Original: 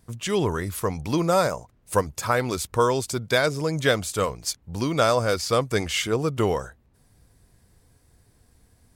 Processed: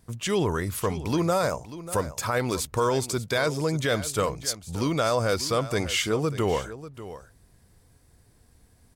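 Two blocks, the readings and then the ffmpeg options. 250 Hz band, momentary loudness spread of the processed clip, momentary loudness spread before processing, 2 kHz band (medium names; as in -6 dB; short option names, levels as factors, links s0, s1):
-1.0 dB, 6 LU, 7 LU, -3.0 dB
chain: -af "alimiter=limit=0.188:level=0:latency=1:release=35,aecho=1:1:591:0.188"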